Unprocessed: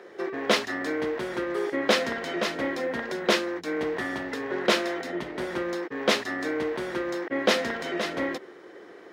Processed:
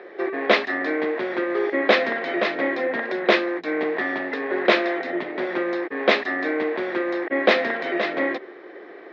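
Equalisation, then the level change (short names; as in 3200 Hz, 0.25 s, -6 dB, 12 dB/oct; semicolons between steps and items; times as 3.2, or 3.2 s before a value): speaker cabinet 350–3400 Hz, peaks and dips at 480 Hz -4 dB, 950 Hz -6 dB, 1400 Hz -6 dB, 3000 Hz -8 dB; +9.0 dB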